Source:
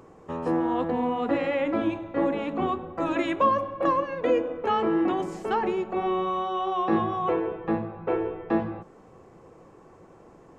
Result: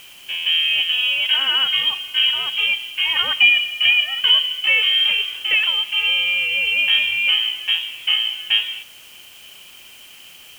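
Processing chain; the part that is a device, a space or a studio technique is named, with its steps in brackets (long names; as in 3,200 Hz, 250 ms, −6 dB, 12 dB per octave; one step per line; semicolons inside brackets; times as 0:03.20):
scrambled radio voice (band-pass filter 310–3,100 Hz; voice inversion scrambler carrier 3,500 Hz; white noise bed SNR 27 dB)
level +8.5 dB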